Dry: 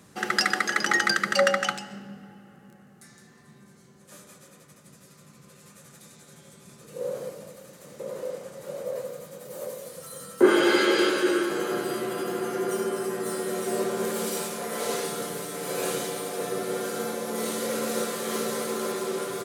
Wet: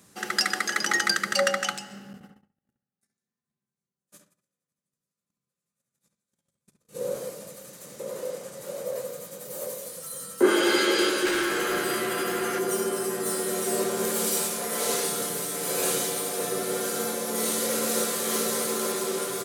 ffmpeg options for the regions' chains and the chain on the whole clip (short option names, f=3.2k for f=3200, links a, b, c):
-filter_complex "[0:a]asettb=1/sr,asplit=3[a][b][c];[a]atrim=end=2.134[d];[b]atrim=start=2.13:end=7.16,asetpts=PTS-STARTPTS,afade=t=in:d=0.004:c=qsin,afade=t=out:st=5.026:d=0.004:c=qsin,agate=range=-41dB:threshold=-46dB:ratio=16:release=100:detection=peak,bass=f=250:g=4,treble=f=4k:g=0,asplit=2[e][f];[f]adelay=68,lowpass=f=2.5k:p=1,volume=-5dB,asplit=2[g][h];[h]adelay=68,lowpass=f=2.5k:p=1,volume=0.2,asplit=2[i][j];[j]adelay=68,lowpass=f=2.5k:p=1,volume=0.2[k];[e][g][i][k]amix=inputs=4:normalize=0,atrim=end_sample=221823[l];[c]atrim=start=7.156[m];[d][l]acrossfade=d=0.004:c1=hsin:c2=qsin[n];[n][m]acrossfade=d=0.004:c1=qsin:c2=hsin,asettb=1/sr,asplit=3[o][p][q];[o]atrim=end=11.254[r];[p]atrim=start=11.25:end=12.59,asetpts=PTS-STARTPTS,afade=t=in:d=0.004:c=qsin,afade=t=out:st=1.336:d=0.004:c=qsin,equalizer=f=1.9k:w=0.98:g=8,asoftclip=type=hard:threshold=-22dB[s];[q]atrim=start=12.586[t];[r][s]acrossfade=d=0.004:c1=hsin:c2=qsin[u];[u][t]acrossfade=d=0.004:c1=qsin:c2=hsin,highshelf=f=4.1k:g=9,bandreject=f=50:t=h:w=6,bandreject=f=100:t=h:w=6,bandreject=f=150:t=h:w=6,dynaudnorm=f=360:g=3:m=5dB,volume=-5dB"